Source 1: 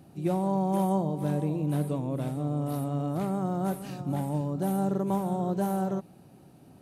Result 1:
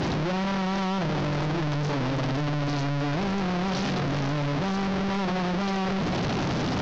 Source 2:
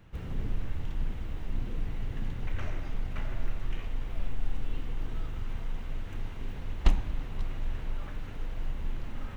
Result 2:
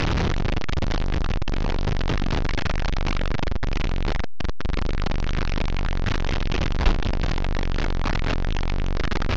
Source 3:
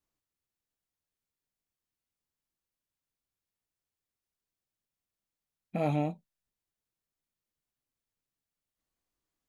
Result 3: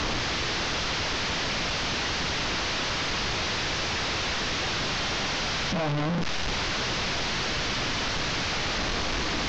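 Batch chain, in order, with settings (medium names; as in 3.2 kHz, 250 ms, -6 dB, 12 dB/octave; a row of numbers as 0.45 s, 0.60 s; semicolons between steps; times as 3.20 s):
one-bit delta coder 32 kbps, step -17 dBFS; distance through air 75 m; normalise loudness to -27 LUFS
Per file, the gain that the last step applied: -3.0 dB, +2.0 dB, -3.0 dB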